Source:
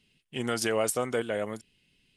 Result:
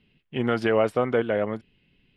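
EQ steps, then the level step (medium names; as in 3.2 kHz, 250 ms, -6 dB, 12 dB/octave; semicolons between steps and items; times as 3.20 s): distance through air 410 m; +7.5 dB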